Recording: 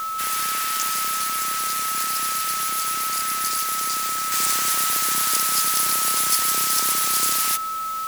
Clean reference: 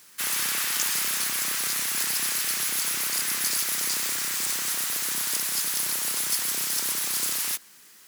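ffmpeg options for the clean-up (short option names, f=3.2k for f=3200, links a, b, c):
-af "bandreject=f=1.3k:w=30,afwtdn=0.013,asetnsamples=n=441:p=0,asendcmd='4.32 volume volume -5.5dB',volume=0dB"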